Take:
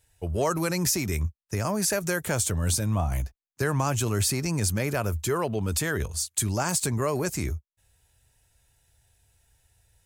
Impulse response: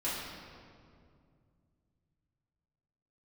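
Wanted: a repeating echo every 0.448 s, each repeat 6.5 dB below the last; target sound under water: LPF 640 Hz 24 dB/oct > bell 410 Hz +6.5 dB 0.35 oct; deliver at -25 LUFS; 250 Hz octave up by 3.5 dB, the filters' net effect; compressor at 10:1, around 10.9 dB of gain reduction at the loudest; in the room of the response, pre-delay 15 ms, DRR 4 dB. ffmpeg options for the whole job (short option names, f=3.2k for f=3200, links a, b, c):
-filter_complex "[0:a]equalizer=f=250:t=o:g=4,acompressor=threshold=-32dB:ratio=10,aecho=1:1:448|896|1344|1792|2240|2688:0.473|0.222|0.105|0.0491|0.0231|0.0109,asplit=2[a][b];[1:a]atrim=start_sample=2205,adelay=15[c];[b][c]afir=irnorm=-1:irlink=0,volume=-10dB[d];[a][d]amix=inputs=2:normalize=0,lowpass=f=640:w=0.5412,lowpass=f=640:w=1.3066,equalizer=f=410:t=o:w=0.35:g=6.5,volume=9.5dB"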